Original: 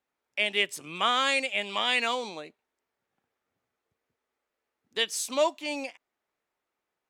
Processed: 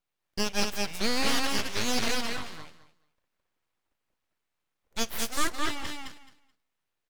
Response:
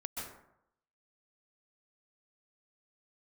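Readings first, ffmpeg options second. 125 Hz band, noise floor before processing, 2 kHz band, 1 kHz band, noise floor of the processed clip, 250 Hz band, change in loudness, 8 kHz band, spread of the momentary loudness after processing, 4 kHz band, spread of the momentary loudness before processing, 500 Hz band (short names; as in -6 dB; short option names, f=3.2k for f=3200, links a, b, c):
+10.5 dB, under -85 dBFS, -4.0 dB, -4.0 dB, -83 dBFS, +6.0 dB, -2.5 dB, +3.5 dB, 14 LU, -2.5 dB, 12 LU, -5.0 dB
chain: -filter_complex "[0:a]aecho=1:1:215|430|645:0.708|0.127|0.0229,aeval=exprs='abs(val(0))':c=same,asplit=2[a][b];[1:a]atrim=start_sample=2205,asetrate=57330,aresample=44100,adelay=50[c];[b][c]afir=irnorm=-1:irlink=0,volume=-19dB[d];[a][d]amix=inputs=2:normalize=0"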